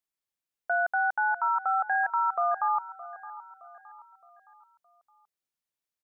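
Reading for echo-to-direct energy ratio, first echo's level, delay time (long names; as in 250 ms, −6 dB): −15.5 dB, −16.5 dB, 617 ms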